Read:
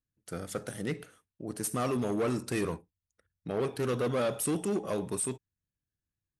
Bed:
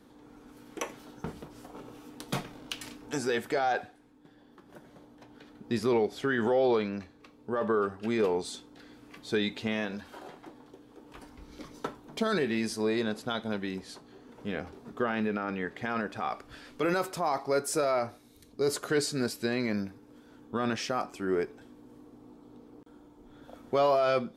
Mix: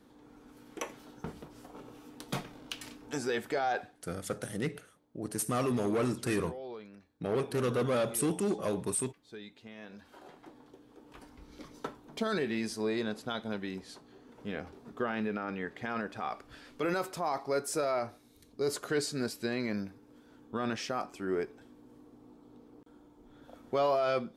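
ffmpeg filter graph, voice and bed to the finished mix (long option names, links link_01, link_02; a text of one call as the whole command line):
ffmpeg -i stem1.wav -i stem2.wav -filter_complex "[0:a]adelay=3750,volume=0dB[link_01];[1:a]volume=11.5dB,afade=type=out:start_time=3.83:duration=0.44:silence=0.177828,afade=type=in:start_time=9.75:duration=0.81:silence=0.188365[link_02];[link_01][link_02]amix=inputs=2:normalize=0" out.wav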